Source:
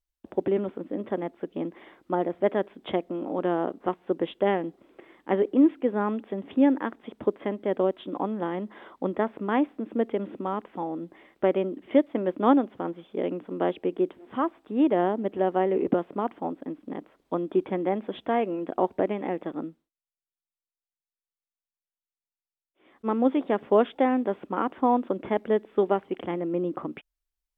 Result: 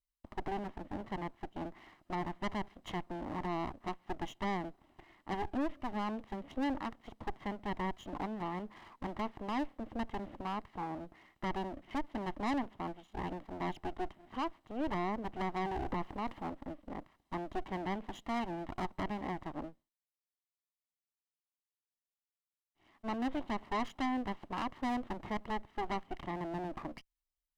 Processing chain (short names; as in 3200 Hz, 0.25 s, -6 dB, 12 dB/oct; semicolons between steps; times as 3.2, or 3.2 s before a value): minimum comb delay 0.99 ms; 15.77–16.5 transient shaper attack -3 dB, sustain +7 dB; soft clip -24.5 dBFS, distortion -8 dB; gain -6 dB